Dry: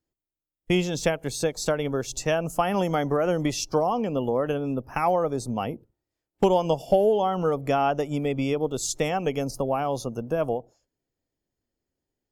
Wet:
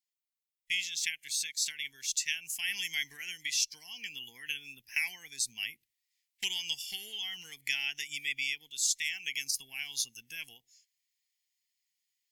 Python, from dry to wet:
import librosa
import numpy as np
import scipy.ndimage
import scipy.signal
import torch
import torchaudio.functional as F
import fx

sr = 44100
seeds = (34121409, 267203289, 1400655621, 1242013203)

y = scipy.signal.sosfilt(scipy.signal.ellip(4, 1.0, 40, 2000.0, 'highpass', fs=sr, output='sos'), x)
y = fx.rider(y, sr, range_db=4, speed_s=0.5)
y = y * 10.0 ** (4.5 / 20.0)